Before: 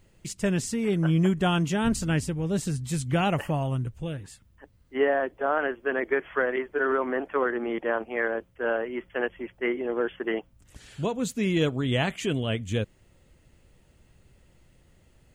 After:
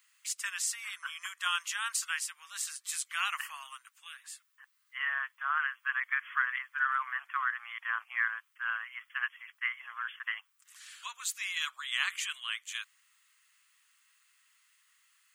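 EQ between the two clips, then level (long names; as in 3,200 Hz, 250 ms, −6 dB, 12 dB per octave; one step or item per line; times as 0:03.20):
Chebyshev high-pass filter 1,100 Hz, order 5
high-shelf EQ 6,600 Hz +5.5 dB
0.0 dB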